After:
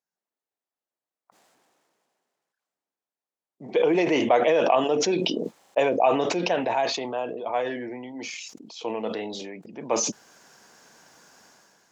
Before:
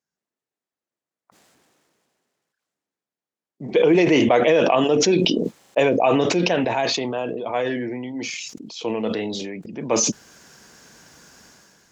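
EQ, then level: HPF 220 Hz 6 dB/oct; bell 800 Hz +6 dB 1.2 oct; -6.0 dB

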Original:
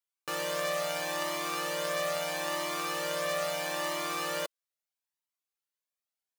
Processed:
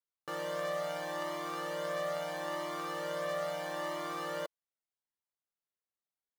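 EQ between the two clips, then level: Butterworth band-stop 2500 Hz, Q 6.6; high shelf 2700 Hz -12 dB; -2.0 dB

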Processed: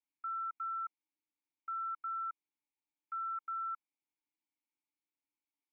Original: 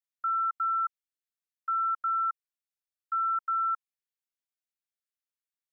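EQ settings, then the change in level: vowel filter u; +14.0 dB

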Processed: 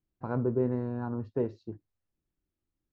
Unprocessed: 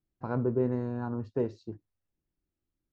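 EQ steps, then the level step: air absorption 60 m; high shelf 3900 Hz -6.5 dB; 0.0 dB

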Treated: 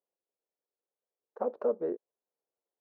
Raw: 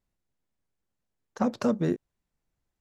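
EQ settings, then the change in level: resonant high-pass 460 Hz, resonance Q 3.4; Chebyshev low-pass 1000 Hz, order 2; -8.5 dB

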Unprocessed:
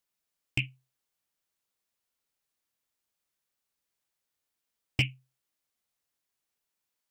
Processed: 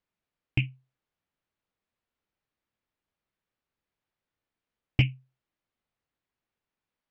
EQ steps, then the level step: LPF 2800 Hz 12 dB/oct; low shelf 350 Hz +7 dB; +1.0 dB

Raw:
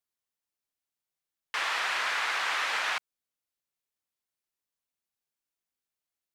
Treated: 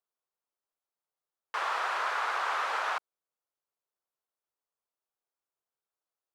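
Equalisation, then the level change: band shelf 720 Hz +11.5 dB 2.3 oct; -8.5 dB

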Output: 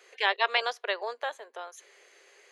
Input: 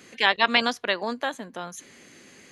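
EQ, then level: Chebyshev high-pass 400 Hz, order 5; high shelf 4600 Hz -8 dB; -3.5 dB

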